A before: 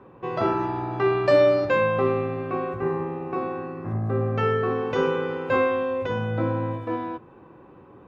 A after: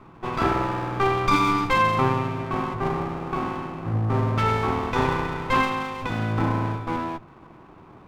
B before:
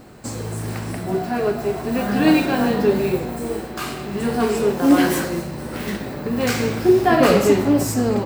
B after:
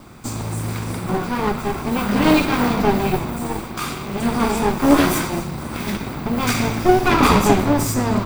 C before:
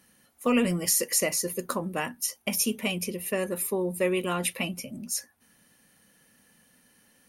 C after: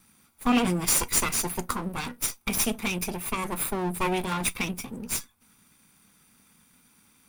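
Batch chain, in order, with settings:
comb filter that takes the minimum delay 0.84 ms; trim +3 dB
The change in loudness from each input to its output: 0.0 LU, +0.5 LU, +0.5 LU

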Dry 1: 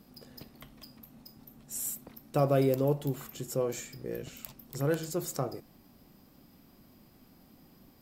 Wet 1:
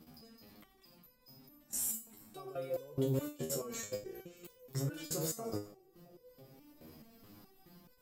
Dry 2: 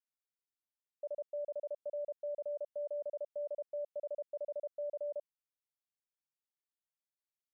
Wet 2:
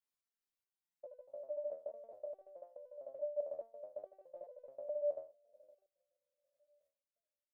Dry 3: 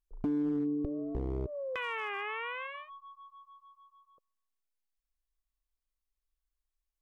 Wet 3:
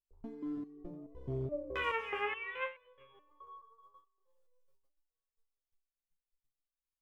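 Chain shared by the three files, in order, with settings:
two-band feedback delay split 700 Hz, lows 332 ms, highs 89 ms, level -13 dB; level held to a coarse grid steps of 20 dB; resonator arpeggio 4.7 Hz 79–500 Hz; trim +13.5 dB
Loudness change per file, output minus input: -6.5 LU, -3.5 LU, -4.0 LU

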